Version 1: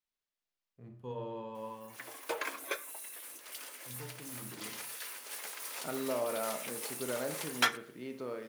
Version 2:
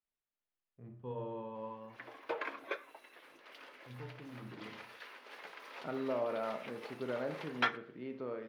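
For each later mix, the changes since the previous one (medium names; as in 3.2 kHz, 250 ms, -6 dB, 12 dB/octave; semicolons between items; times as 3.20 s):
master: add distance through air 330 m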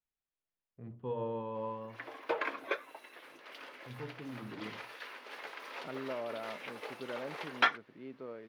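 first voice +9.0 dB; background +5.5 dB; reverb: off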